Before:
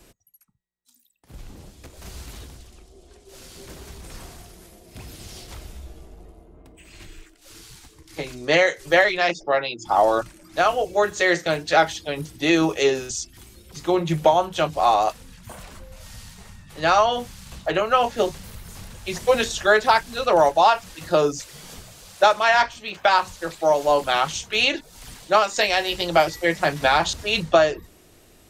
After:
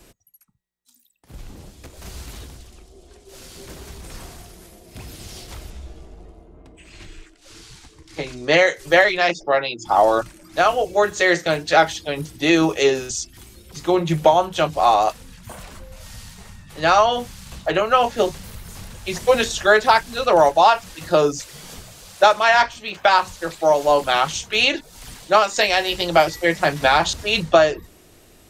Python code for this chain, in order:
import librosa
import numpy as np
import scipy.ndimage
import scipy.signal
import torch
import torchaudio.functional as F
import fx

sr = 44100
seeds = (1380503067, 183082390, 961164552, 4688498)

y = fx.lowpass(x, sr, hz=7800.0, slope=12, at=(5.7, 8.58))
y = y * librosa.db_to_amplitude(2.5)